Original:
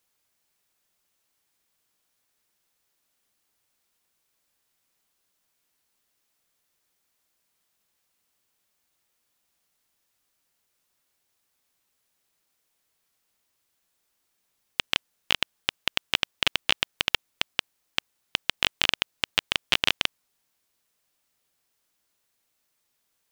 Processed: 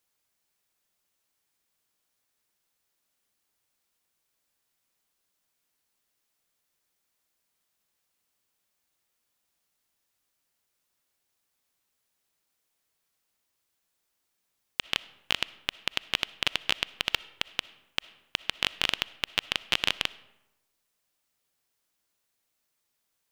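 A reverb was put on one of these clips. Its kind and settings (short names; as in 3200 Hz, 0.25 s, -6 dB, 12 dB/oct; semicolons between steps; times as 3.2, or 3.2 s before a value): digital reverb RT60 0.98 s, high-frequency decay 0.6×, pre-delay 20 ms, DRR 18.5 dB; gain -3.5 dB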